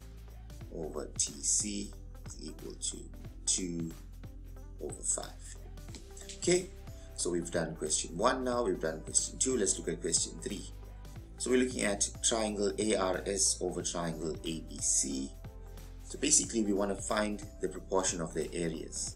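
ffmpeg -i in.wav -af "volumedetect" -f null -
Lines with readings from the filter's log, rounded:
mean_volume: -34.6 dB
max_volume: -11.5 dB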